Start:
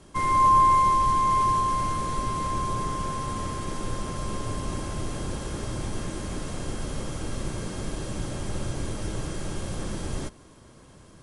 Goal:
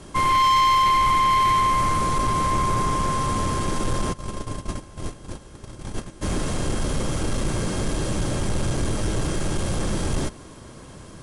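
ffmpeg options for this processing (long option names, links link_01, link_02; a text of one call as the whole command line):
ffmpeg -i in.wav -filter_complex "[0:a]asplit=3[link_01][link_02][link_03];[link_01]afade=type=out:start_time=4.12:duration=0.02[link_04];[link_02]agate=range=-21dB:threshold=-27dB:ratio=16:detection=peak,afade=type=in:start_time=4.12:duration=0.02,afade=type=out:start_time=6.21:duration=0.02[link_05];[link_03]afade=type=in:start_time=6.21:duration=0.02[link_06];[link_04][link_05][link_06]amix=inputs=3:normalize=0,asoftclip=type=tanh:threshold=-25dB,volume=9dB" out.wav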